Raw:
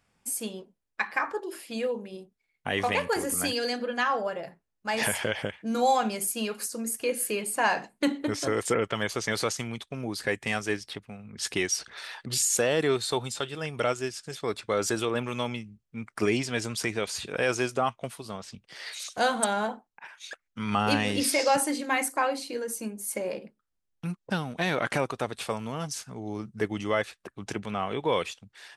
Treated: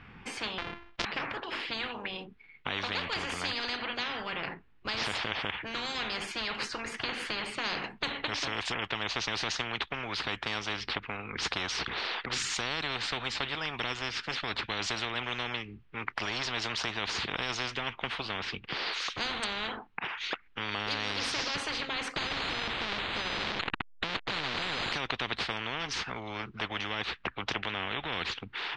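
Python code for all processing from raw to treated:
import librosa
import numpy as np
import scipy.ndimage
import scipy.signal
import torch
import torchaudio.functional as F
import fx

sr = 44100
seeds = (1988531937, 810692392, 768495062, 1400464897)

y = fx.chain(x, sr, fx.sample_sort(block=128),
    fx.peak_eq(hz=140.0, db=-12.0, octaves=1.8),
    fx.sustainer(db_per_s=86.0), at=(0.58, 1.05))
y = fx.chain(y, sr, fx.clip_1bit(),
    fx.savgol(points=15),
    fx.resample_bad(factor=8, down='none', up='hold'), at=(22.16, 24.92))
y = scipy.signal.sosfilt(scipy.signal.butter(4, 3000.0, 'lowpass', fs=sr, output='sos'), y)
y = fx.peak_eq(y, sr, hz=600.0, db=-13.0, octaves=0.6)
y = fx.spectral_comp(y, sr, ratio=10.0)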